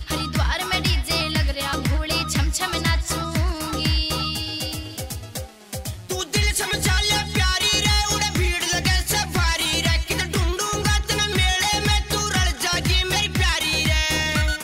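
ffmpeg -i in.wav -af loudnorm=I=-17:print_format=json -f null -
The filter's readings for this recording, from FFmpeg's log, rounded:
"input_i" : "-20.8",
"input_tp" : "-7.6",
"input_lra" : "4.4",
"input_thresh" : "-31.0",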